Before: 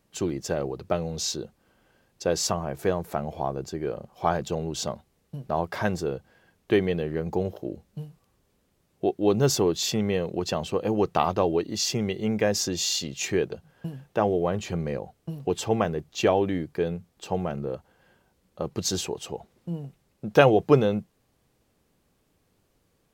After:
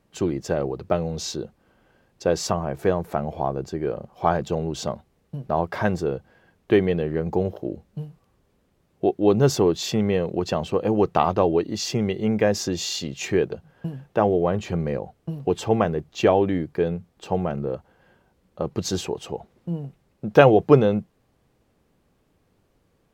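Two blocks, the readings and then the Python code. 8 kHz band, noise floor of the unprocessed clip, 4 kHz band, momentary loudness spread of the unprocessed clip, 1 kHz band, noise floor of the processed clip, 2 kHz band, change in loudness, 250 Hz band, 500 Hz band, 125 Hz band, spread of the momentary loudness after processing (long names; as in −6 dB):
−3.0 dB, −70 dBFS, −1.5 dB, 15 LU, +3.5 dB, −66 dBFS, +2.0 dB, +3.5 dB, +4.0 dB, +4.0 dB, +4.0 dB, 15 LU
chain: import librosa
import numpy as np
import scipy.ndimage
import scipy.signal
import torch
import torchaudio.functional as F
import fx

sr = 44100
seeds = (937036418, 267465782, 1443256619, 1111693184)

y = fx.high_shelf(x, sr, hz=3400.0, db=-9.0)
y = y * 10.0 ** (4.0 / 20.0)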